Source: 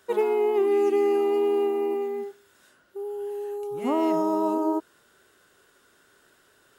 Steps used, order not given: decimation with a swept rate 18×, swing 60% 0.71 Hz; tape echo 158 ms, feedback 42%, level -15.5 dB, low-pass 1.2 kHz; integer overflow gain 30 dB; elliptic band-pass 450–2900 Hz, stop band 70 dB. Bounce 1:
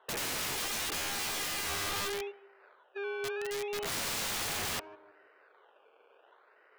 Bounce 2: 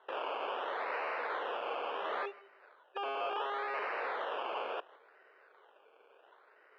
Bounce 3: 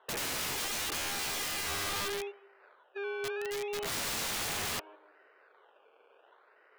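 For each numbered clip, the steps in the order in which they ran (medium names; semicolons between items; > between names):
decimation with a swept rate > elliptic band-pass > tape echo > integer overflow; integer overflow > tape echo > decimation with a swept rate > elliptic band-pass; decimation with a swept rate > tape echo > elliptic band-pass > integer overflow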